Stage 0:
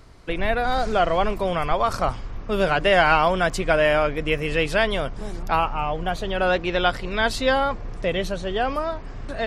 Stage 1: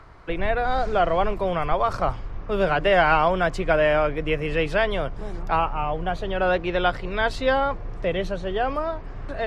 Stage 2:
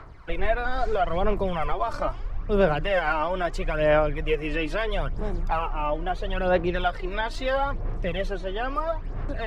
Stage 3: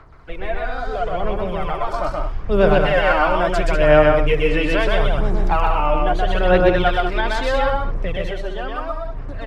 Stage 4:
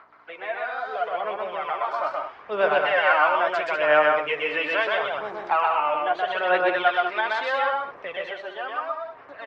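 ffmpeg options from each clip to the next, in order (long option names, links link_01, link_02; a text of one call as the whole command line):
ffmpeg -i in.wav -filter_complex "[0:a]lowpass=frequency=2200:poles=1,equalizer=frequency=230:width_type=o:width=0.22:gain=-9,acrossover=split=200|910|1700[link_01][link_02][link_03][link_04];[link_03]acompressor=mode=upward:threshold=-44dB:ratio=2.5[link_05];[link_01][link_02][link_05][link_04]amix=inputs=4:normalize=0" out.wav
ffmpeg -i in.wav -af "alimiter=limit=-13.5dB:level=0:latency=1:release=136,aphaser=in_gain=1:out_gain=1:delay=3.4:decay=0.57:speed=0.76:type=sinusoidal,volume=-3.5dB" out.wav
ffmpeg -i in.wav -filter_complex "[0:a]dynaudnorm=framelen=200:gausssize=21:maxgain=11.5dB,asplit=2[link_01][link_02];[link_02]aecho=0:1:125.4|195.3:0.794|0.398[link_03];[link_01][link_03]amix=inputs=2:normalize=0,volume=-2dB" out.wav
ffmpeg -i in.wav -filter_complex "[0:a]aeval=exprs='val(0)+0.00631*(sin(2*PI*60*n/s)+sin(2*PI*2*60*n/s)/2+sin(2*PI*3*60*n/s)/3+sin(2*PI*4*60*n/s)/4+sin(2*PI*5*60*n/s)/5)':channel_layout=same,highpass=730,lowpass=2900,asplit=2[link_01][link_02];[link_02]adelay=14,volume=-12dB[link_03];[link_01][link_03]amix=inputs=2:normalize=0" out.wav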